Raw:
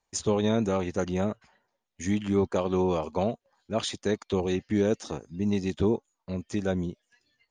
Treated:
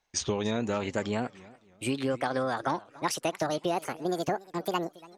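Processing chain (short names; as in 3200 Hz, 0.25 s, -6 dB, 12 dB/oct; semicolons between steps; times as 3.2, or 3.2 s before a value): speed glide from 91% -> 199%; compressor, threshold -26 dBFS, peak gain reduction 7 dB; bell 2300 Hz +6.5 dB 2 oct; warbling echo 0.282 s, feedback 34%, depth 199 cents, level -21 dB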